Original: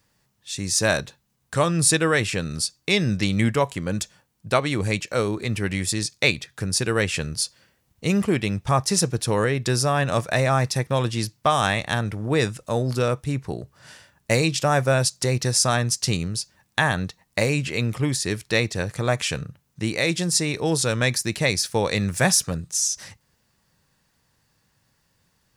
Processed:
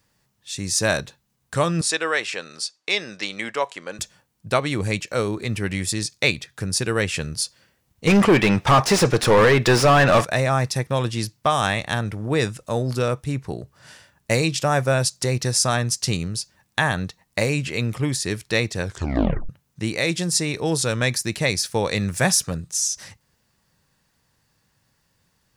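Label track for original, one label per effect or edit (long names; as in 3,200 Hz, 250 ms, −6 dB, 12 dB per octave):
1.810000	3.990000	band-pass filter 520–6,700 Hz
8.070000	10.250000	mid-hump overdrive drive 28 dB, tone 1,900 Hz, clips at −6 dBFS
18.830000	18.830000	tape stop 0.66 s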